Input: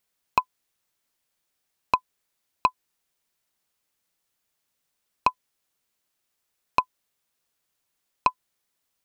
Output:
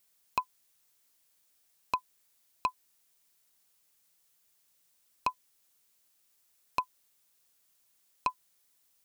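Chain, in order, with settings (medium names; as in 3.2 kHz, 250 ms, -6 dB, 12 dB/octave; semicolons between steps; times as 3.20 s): treble shelf 4.5 kHz +9.5 dB; peak limiter -14.5 dBFS, peak gain reduction 11 dB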